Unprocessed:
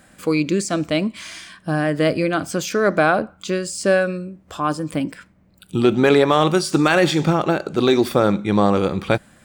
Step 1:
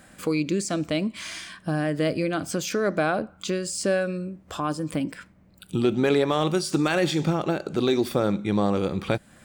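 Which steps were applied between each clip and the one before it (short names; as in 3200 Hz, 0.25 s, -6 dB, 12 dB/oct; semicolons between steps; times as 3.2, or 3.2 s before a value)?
dynamic EQ 1200 Hz, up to -4 dB, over -29 dBFS, Q 0.72; in parallel at +3 dB: compressor, threshold -27 dBFS, peak gain reduction 15 dB; on the sum: gain -8 dB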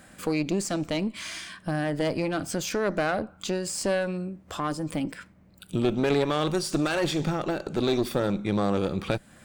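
one diode to ground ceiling -24.5 dBFS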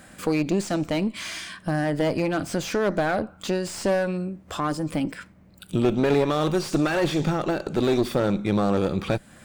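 slew limiter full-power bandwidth 82 Hz; gain +3.5 dB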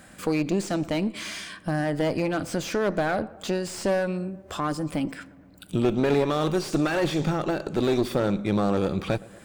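tape echo 0.117 s, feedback 77%, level -20 dB, low-pass 1600 Hz; gain -1.5 dB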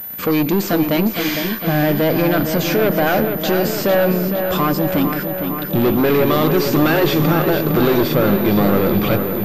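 sample leveller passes 3; darkening echo 0.458 s, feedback 72%, low-pass 4400 Hz, level -7 dB; pulse-width modulation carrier 14000 Hz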